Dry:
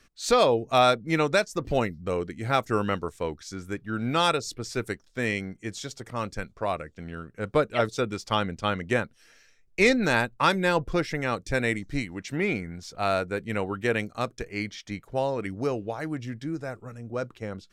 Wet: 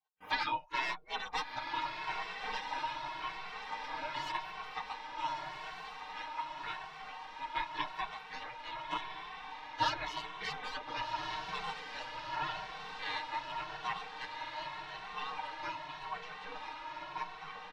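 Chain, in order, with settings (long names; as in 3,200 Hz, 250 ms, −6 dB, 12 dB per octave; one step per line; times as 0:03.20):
stylus tracing distortion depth 0.028 ms
gate on every frequency bin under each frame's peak −25 dB weak
noise gate with hold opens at −53 dBFS
parametric band 940 Hz +14 dB 0.39 octaves
comb filter 6.5 ms, depth 88%
pitch vibrato 7.4 Hz 16 cents
high-frequency loss of the air 280 metres
feedback delay with all-pass diffusion 1,418 ms, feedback 64%, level −5 dB
barber-pole flanger 2.2 ms +0.86 Hz
level +6 dB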